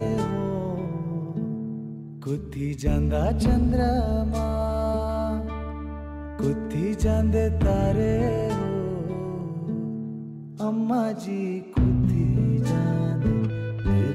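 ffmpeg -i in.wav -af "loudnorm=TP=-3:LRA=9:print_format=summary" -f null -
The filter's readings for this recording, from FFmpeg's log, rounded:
Input Integrated:    -25.3 LUFS
Input True Peak:     -13.1 dBTP
Input LRA:             3.6 LU
Input Threshold:     -35.5 LUFS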